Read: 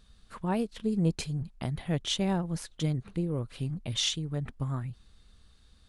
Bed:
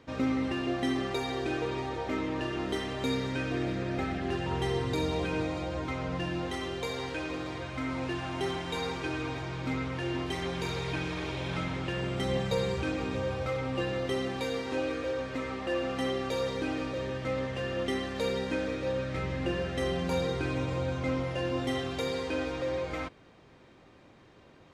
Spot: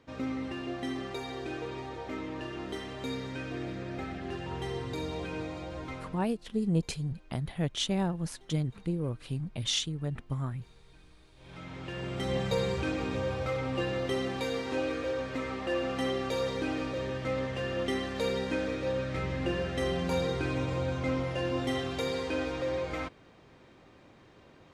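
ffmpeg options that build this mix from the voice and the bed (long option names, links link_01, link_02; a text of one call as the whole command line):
ffmpeg -i stem1.wav -i stem2.wav -filter_complex "[0:a]adelay=5700,volume=-1dB[link_01];[1:a]volume=23dB,afade=type=out:start_time=5.93:duration=0.35:silence=0.0707946,afade=type=in:start_time=11.36:duration=1.11:silence=0.0375837[link_02];[link_01][link_02]amix=inputs=2:normalize=0" out.wav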